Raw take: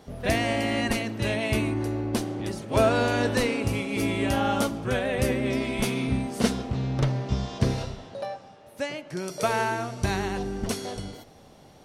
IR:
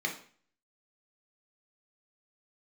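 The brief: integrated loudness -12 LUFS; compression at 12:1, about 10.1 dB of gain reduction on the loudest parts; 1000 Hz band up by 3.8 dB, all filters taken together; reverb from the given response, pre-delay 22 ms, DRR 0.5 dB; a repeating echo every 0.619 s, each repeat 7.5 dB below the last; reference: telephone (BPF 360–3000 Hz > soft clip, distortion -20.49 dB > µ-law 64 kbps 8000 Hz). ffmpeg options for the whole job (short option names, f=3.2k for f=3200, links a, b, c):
-filter_complex "[0:a]equalizer=f=1k:t=o:g=5.5,acompressor=threshold=-24dB:ratio=12,aecho=1:1:619|1238|1857|2476|3095:0.422|0.177|0.0744|0.0312|0.0131,asplit=2[a][b];[1:a]atrim=start_sample=2205,adelay=22[c];[b][c]afir=irnorm=-1:irlink=0,volume=-6.5dB[d];[a][d]amix=inputs=2:normalize=0,highpass=360,lowpass=3k,asoftclip=threshold=-19.5dB,volume=18.5dB" -ar 8000 -c:a pcm_mulaw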